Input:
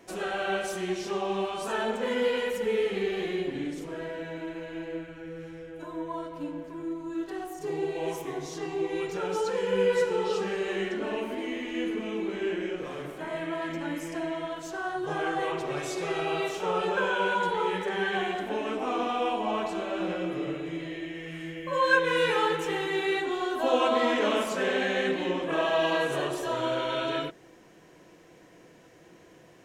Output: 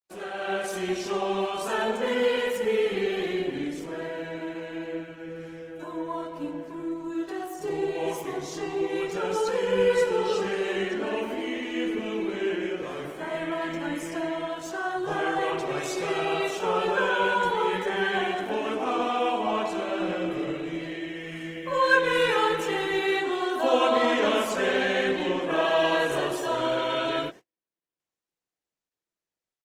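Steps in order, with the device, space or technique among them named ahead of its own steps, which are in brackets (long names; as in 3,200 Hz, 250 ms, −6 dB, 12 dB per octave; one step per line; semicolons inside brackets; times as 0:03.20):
video call (high-pass filter 150 Hz 6 dB per octave; automatic gain control gain up to 6.5 dB; noise gate −39 dBFS, range −46 dB; level −3.5 dB; Opus 20 kbit/s 48,000 Hz)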